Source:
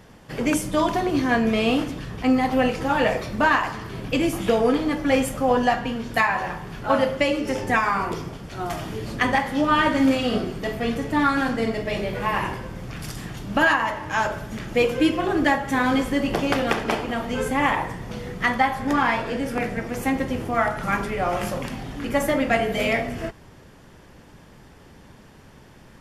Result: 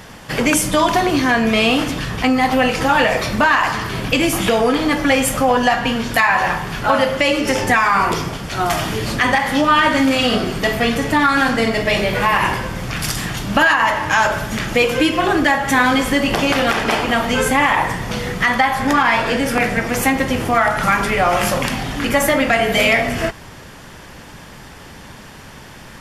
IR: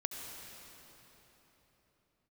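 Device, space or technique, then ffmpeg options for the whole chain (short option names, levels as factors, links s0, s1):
mastering chain: -af "equalizer=f=400:t=o:w=0.97:g=-2.5,acompressor=threshold=0.0631:ratio=2.5,asoftclip=type=tanh:threshold=0.251,tiltshelf=f=710:g=-3.5,alimiter=level_in=5.96:limit=0.891:release=50:level=0:latency=1,volume=0.668"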